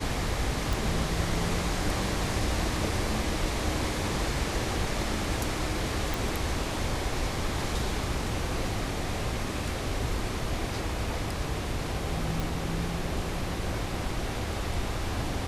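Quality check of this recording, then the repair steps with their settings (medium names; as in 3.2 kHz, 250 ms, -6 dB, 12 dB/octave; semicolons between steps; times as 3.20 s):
0.73 s: pop
6.14 s: pop
12.40 s: pop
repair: de-click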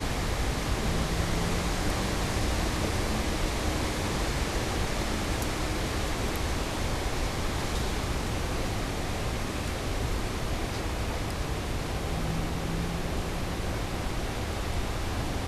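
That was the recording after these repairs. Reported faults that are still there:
nothing left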